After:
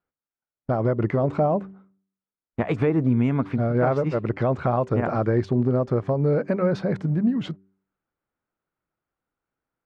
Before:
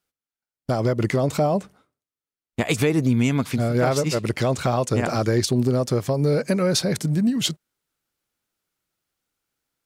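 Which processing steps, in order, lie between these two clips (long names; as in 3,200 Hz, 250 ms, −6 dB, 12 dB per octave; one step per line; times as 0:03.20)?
Chebyshev low-pass filter 1,300 Hz, order 2
hum removal 96.47 Hz, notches 4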